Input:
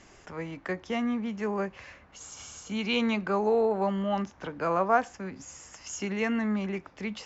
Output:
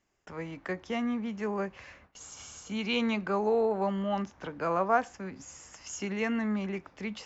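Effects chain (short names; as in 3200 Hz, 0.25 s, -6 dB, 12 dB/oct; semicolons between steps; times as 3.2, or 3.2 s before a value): gate with hold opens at -42 dBFS; gain -2 dB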